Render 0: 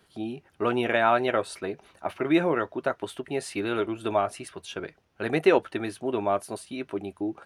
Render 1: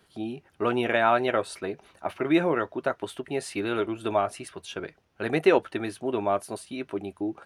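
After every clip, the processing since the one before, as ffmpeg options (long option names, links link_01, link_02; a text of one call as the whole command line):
ffmpeg -i in.wav -af anull out.wav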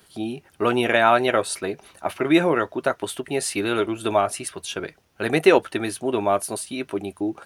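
ffmpeg -i in.wav -af "highshelf=frequency=5300:gain=11.5,volume=4.5dB" out.wav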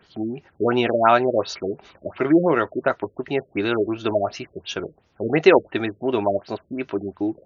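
ffmpeg -i in.wav -af "afftfilt=real='re*lt(b*sr/1024,590*pow(7100/590,0.5+0.5*sin(2*PI*2.8*pts/sr)))':imag='im*lt(b*sr/1024,590*pow(7100/590,0.5+0.5*sin(2*PI*2.8*pts/sr)))':win_size=1024:overlap=0.75,volume=1.5dB" out.wav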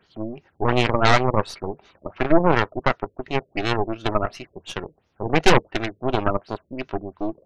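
ffmpeg -i in.wav -af "aeval=exprs='0.891*(cos(1*acos(clip(val(0)/0.891,-1,1)))-cos(1*PI/2))+0.398*(cos(6*acos(clip(val(0)/0.891,-1,1)))-cos(6*PI/2))':channel_layout=same,volume=-5dB" out.wav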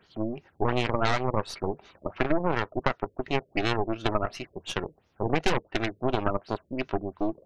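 ffmpeg -i in.wav -af "acompressor=threshold=-20dB:ratio=5" out.wav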